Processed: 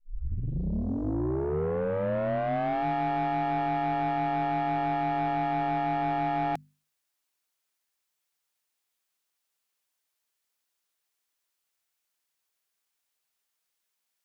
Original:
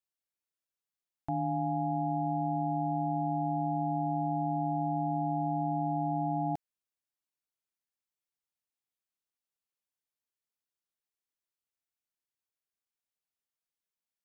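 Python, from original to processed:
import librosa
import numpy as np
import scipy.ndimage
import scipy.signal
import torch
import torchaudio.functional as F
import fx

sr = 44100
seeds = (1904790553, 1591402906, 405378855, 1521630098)

p1 = fx.tape_start_head(x, sr, length_s=2.85)
p2 = fx.low_shelf(p1, sr, hz=430.0, db=-9.5)
p3 = fx.rider(p2, sr, range_db=4, speed_s=0.5)
p4 = p2 + F.gain(torch.from_numpy(p3), -1.0).numpy()
p5 = 10.0 ** (-31.5 / 20.0) * np.tanh(p4 / 10.0 ** (-31.5 / 20.0))
p6 = fx.hum_notches(p5, sr, base_hz=50, count=5)
y = F.gain(torch.from_numpy(p6), 7.0).numpy()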